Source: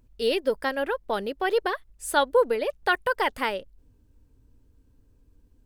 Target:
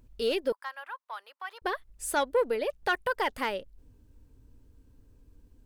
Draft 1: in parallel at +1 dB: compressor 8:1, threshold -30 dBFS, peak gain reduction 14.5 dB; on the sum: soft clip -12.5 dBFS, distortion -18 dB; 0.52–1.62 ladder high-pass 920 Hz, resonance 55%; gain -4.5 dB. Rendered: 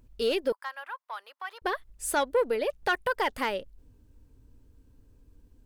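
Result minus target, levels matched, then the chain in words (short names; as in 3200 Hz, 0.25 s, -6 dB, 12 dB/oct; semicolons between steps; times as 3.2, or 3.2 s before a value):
compressor: peak gain reduction -7.5 dB
in parallel at +1 dB: compressor 8:1, threshold -38.5 dBFS, peak gain reduction 22 dB; on the sum: soft clip -12.5 dBFS, distortion -19 dB; 0.52–1.62 ladder high-pass 920 Hz, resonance 55%; gain -4.5 dB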